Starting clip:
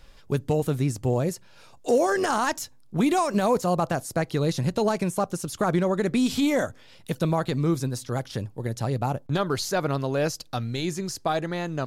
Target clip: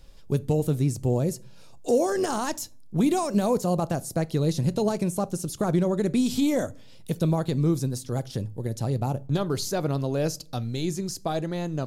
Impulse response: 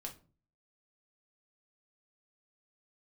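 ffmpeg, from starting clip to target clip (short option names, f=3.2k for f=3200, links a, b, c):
-filter_complex "[0:a]equalizer=f=1.6k:w=0.56:g=-9.5,asplit=2[a][b];[1:a]atrim=start_sample=2205,asetrate=34839,aresample=44100[c];[b][c]afir=irnorm=-1:irlink=0,volume=-11.5dB[d];[a][d]amix=inputs=2:normalize=0"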